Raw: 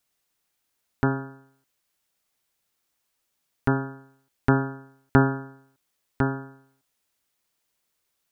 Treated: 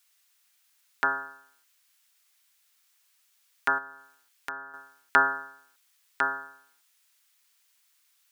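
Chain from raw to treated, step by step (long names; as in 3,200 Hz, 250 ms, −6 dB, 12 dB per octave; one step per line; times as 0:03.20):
high-pass filter 1,400 Hz 12 dB per octave
0:03.78–0:04.74: downward compressor 2.5 to 1, threshold −50 dBFS, peak gain reduction 15.5 dB
level +9 dB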